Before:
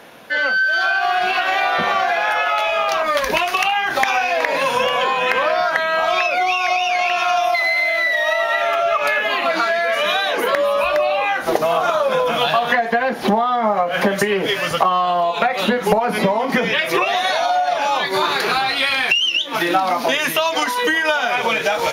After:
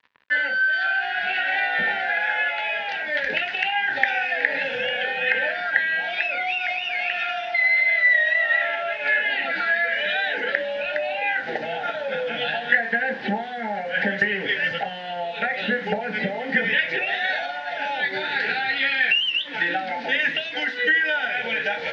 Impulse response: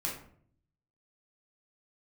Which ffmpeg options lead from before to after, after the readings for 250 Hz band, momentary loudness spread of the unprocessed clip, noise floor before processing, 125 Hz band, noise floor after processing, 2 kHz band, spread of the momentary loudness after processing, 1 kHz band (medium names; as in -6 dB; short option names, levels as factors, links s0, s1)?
-8.5 dB, 2 LU, -24 dBFS, -8.0 dB, -32 dBFS, -1.0 dB, 8 LU, -11.5 dB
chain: -filter_complex "[0:a]asuperstop=centerf=1100:order=20:qfactor=2.2,asplit=2[s0][s1];[1:a]atrim=start_sample=2205,asetrate=88200,aresample=44100,highshelf=f=5000:g=-10.5[s2];[s1][s2]afir=irnorm=-1:irlink=0,volume=0.708[s3];[s0][s3]amix=inputs=2:normalize=0,acrusher=bits=4:mix=0:aa=0.5,highpass=120,equalizer=f=160:t=q:w=4:g=-5,equalizer=f=340:t=q:w=4:g=-8,equalizer=f=680:t=q:w=4:g=-8,equalizer=f=1000:t=q:w=4:g=8,equalizer=f=1800:t=q:w=4:g=9,equalizer=f=2500:t=q:w=4:g=3,lowpass=f=3900:w=0.5412,lowpass=f=3900:w=1.3066,volume=0.376"